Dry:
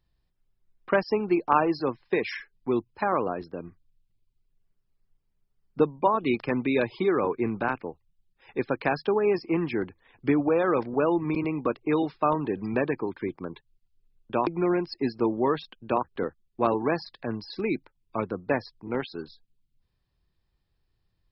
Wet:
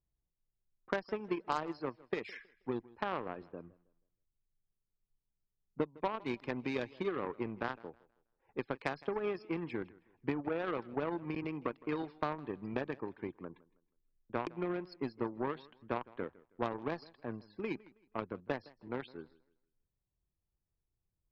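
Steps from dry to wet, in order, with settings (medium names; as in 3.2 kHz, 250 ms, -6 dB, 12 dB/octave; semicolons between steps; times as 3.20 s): level-controlled noise filter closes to 900 Hz, open at -21 dBFS; Chebyshev shaper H 7 -20 dB, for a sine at -6.5 dBFS; compression 3:1, threshold -32 dBFS, peak gain reduction 13 dB; modulated delay 160 ms, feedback 30%, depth 78 cents, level -22 dB; trim -1.5 dB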